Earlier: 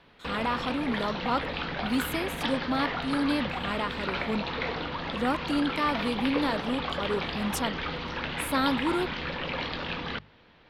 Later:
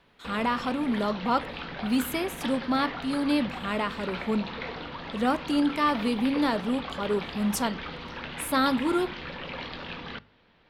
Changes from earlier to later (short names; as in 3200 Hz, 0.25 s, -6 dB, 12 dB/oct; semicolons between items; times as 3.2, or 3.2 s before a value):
background -6.0 dB; reverb: on, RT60 0.40 s